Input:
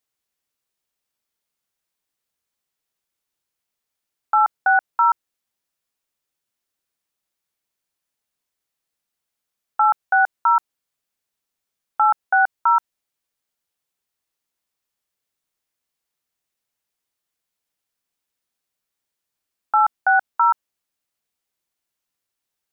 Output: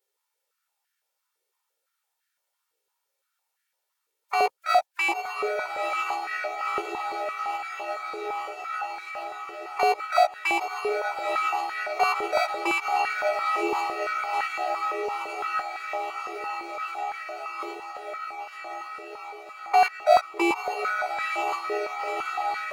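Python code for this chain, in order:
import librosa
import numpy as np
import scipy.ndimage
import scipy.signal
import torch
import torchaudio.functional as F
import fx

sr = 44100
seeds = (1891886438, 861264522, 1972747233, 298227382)

p1 = fx.lower_of_two(x, sr, delay_ms=1.9)
p2 = fx.dynamic_eq(p1, sr, hz=1600.0, q=1.6, threshold_db=-31.0, ratio=4.0, max_db=-4)
p3 = p2 + fx.echo_diffused(p2, sr, ms=967, feedback_pct=79, wet_db=-12.0, dry=0)
p4 = fx.pitch_keep_formants(p3, sr, semitones=-2.5)
p5 = fx.over_compress(p4, sr, threshold_db=-30.0, ratio=-0.5)
p6 = p4 + F.gain(torch.from_numpy(p5), -0.5).numpy()
p7 = fx.doubler(p6, sr, ms=15.0, db=-4.5)
p8 = p7 + 10.0 ** (-22.0 / 20.0) * np.pad(p7, (int(665 * sr / 1000.0), 0))[:len(p7)]
p9 = fx.filter_held_highpass(p8, sr, hz=5.9, low_hz=450.0, high_hz=1600.0)
y = F.gain(torch.from_numpy(p9), -6.5).numpy()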